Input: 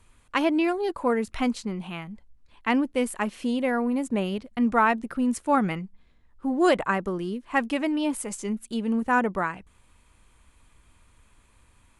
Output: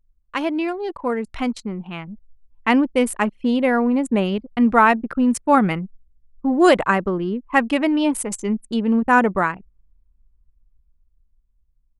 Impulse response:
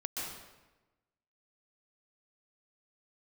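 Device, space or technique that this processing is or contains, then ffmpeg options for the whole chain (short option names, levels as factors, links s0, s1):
voice memo with heavy noise removal: -af "anlmdn=1.58,dynaudnorm=f=390:g=11:m=3.76"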